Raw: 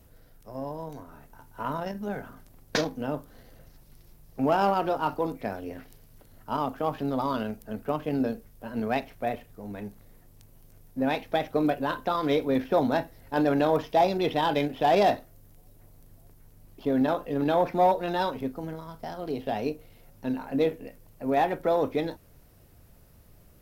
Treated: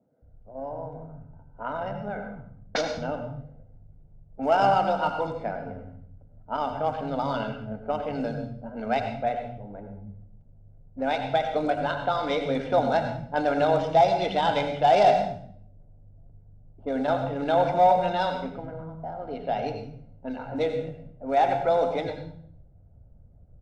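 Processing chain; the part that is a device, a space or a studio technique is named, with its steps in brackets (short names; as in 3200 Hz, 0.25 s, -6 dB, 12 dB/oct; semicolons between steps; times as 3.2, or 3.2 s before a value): low-pass opened by the level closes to 380 Hz, open at -21.5 dBFS; steep low-pass 9000 Hz 48 dB/oct; microphone above a desk (comb 1.4 ms, depth 56%; reverb RT60 0.60 s, pre-delay 77 ms, DRR 6 dB); bands offset in time highs, lows 0.22 s, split 200 Hz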